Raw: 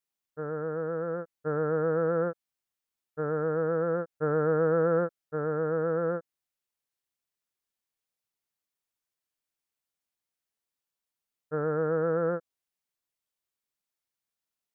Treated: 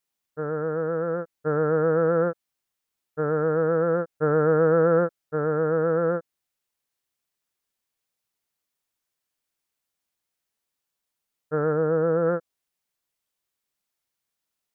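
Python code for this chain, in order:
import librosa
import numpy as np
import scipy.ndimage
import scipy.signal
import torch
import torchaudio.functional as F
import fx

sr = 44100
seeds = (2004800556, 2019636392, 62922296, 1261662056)

y = fx.lowpass(x, sr, hz=1300.0, slope=6, at=(11.72, 12.25), fade=0.02)
y = y * librosa.db_to_amplitude(5.5)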